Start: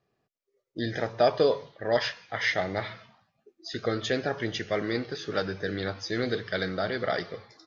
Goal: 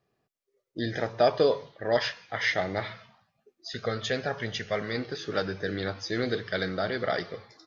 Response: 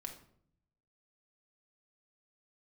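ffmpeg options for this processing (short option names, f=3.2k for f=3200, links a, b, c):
-filter_complex "[0:a]asettb=1/sr,asplit=3[a][b][c];[a]atrim=end=2.924[d];[b]atrim=start=2.92:end=4.98,asetpts=PTS-STARTPTS,afade=t=in:d=0.004:c=qsin,afade=t=out:st=2.056:d=0.004:c=qsin,equalizer=f=320:t=o:w=0.39:g=-12.5[e];[c]atrim=start=4.976[f];[d][e]acrossfade=d=0.004:c1=hsin:c2=qsin[g];[g][f]acrossfade=d=0.004:c1=qsin:c2=hsin"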